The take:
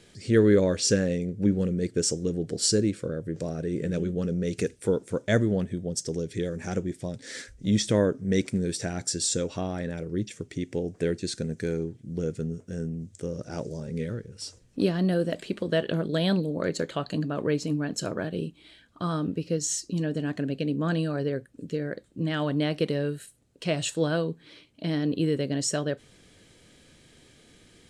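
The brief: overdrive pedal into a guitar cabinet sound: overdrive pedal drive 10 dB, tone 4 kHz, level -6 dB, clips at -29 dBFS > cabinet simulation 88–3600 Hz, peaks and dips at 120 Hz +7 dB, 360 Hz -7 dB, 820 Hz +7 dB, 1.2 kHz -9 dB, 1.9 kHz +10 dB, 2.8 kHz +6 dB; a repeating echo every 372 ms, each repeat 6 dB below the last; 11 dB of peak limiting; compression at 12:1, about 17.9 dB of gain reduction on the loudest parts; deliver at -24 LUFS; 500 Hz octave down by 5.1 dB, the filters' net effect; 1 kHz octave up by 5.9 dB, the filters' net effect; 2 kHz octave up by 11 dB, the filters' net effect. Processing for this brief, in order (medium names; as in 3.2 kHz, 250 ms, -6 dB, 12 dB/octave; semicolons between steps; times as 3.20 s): peaking EQ 500 Hz -7 dB; peaking EQ 1 kHz +9 dB; peaking EQ 2 kHz +4 dB; compression 12:1, threshold -36 dBFS; peak limiter -34 dBFS; feedback delay 372 ms, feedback 50%, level -6 dB; overdrive pedal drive 10 dB, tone 4 kHz, level -6 dB, clips at -29 dBFS; cabinet simulation 88–3600 Hz, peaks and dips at 120 Hz +7 dB, 360 Hz -7 dB, 820 Hz +7 dB, 1.2 kHz -9 dB, 1.9 kHz +10 dB, 2.8 kHz +6 dB; trim +17 dB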